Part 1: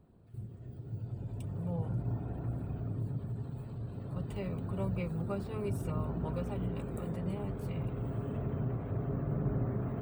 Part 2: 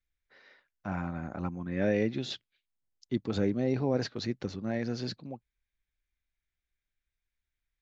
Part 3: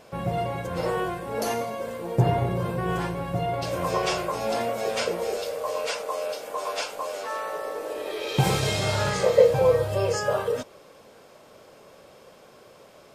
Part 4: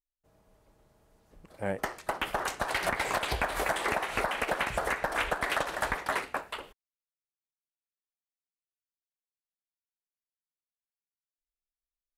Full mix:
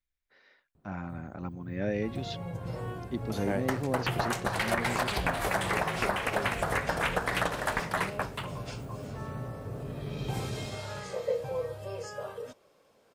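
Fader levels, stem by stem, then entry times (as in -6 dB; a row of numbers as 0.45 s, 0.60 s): -4.0 dB, -3.5 dB, -14.0 dB, 0.0 dB; 0.75 s, 0.00 s, 1.90 s, 1.85 s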